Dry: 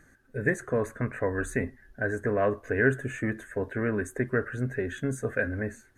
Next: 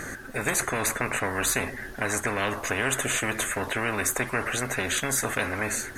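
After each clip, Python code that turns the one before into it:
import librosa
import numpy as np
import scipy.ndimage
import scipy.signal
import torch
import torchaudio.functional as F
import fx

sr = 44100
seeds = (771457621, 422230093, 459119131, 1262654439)

y = fx.low_shelf(x, sr, hz=170.0, db=-7.5)
y = fx.spectral_comp(y, sr, ratio=4.0)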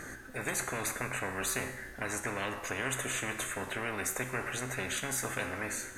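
y = fx.comb_fb(x, sr, f0_hz=64.0, decay_s=0.96, harmonics='all', damping=0.0, mix_pct=70)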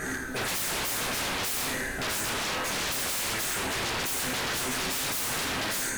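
y = x + 10.0 ** (-8.5 / 20.0) * np.pad(x, (int(82 * sr / 1000.0), 0))[:len(x)]
y = fx.rev_double_slope(y, sr, seeds[0], early_s=0.32, late_s=1.8, knee_db=-18, drr_db=-3.5)
y = 10.0 ** (-33.0 / 20.0) * (np.abs((y / 10.0 ** (-33.0 / 20.0) + 3.0) % 4.0 - 2.0) - 1.0)
y = y * 10.0 ** (7.5 / 20.0)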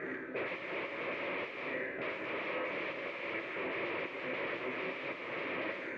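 y = fx.cabinet(x, sr, low_hz=220.0, low_slope=12, high_hz=2300.0, hz=(230.0, 340.0, 550.0, 790.0, 1500.0, 2300.0), db=(-7, 6, 8, -10, -9, 7))
y = y * 10.0 ** (-5.0 / 20.0)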